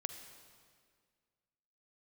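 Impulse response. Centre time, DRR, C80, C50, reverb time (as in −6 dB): 26 ms, 8.0 dB, 9.5 dB, 8.0 dB, 1.9 s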